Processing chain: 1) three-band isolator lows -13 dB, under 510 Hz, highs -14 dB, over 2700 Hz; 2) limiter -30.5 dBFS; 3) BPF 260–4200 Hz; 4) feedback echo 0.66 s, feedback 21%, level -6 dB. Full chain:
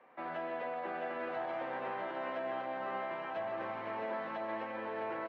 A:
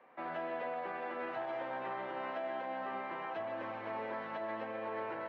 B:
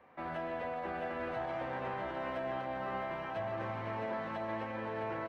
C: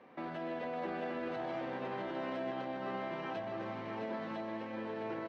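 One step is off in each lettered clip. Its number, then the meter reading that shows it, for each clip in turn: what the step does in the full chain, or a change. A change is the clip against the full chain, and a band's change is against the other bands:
4, loudness change -1.0 LU; 3, 125 Hz band +12.0 dB; 1, 125 Hz band +9.0 dB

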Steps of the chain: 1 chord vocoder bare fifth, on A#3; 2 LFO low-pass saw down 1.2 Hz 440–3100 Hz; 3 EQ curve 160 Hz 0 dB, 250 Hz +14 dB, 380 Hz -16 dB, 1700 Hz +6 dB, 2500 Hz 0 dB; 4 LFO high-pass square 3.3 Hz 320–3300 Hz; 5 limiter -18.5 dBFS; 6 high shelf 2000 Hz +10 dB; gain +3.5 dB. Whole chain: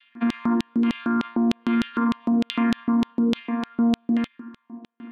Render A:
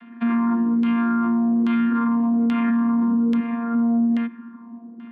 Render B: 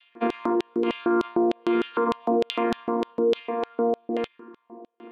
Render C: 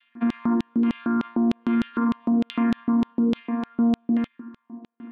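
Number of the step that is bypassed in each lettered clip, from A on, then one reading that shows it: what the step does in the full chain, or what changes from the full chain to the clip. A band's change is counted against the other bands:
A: 4, crest factor change -7.5 dB; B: 3, 500 Hz band +13.0 dB; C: 6, 4 kHz band -7.0 dB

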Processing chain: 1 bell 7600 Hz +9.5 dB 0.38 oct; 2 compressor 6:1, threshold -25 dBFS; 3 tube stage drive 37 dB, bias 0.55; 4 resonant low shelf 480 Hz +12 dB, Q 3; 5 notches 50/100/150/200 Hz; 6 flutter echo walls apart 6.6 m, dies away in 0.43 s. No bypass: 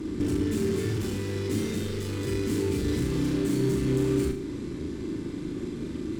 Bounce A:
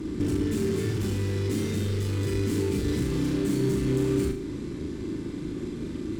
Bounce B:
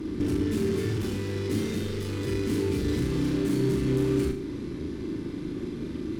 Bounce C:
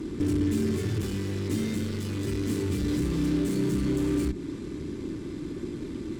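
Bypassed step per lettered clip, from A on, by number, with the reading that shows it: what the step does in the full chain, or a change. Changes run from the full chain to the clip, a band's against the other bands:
5, 125 Hz band +2.0 dB; 1, 8 kHz band -3.5 dB; 6, echo-to-direct -4.0 dB to none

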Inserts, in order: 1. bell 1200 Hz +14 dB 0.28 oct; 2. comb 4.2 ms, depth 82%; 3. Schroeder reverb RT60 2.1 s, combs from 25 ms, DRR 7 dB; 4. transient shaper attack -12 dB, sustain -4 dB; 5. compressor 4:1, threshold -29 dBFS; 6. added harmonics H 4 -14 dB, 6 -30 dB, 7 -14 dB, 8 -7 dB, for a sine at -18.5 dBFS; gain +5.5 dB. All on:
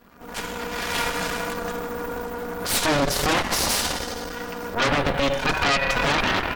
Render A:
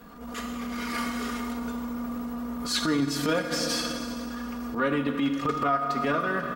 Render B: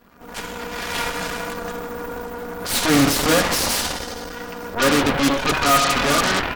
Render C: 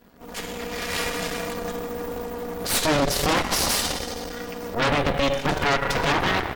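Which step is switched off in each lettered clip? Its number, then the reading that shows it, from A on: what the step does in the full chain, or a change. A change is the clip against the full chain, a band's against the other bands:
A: 6, 250 Hz band +9.0 dB; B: 5, mean gain reduction 2.0 dB; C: 1, 2 kHz band -2.5 dB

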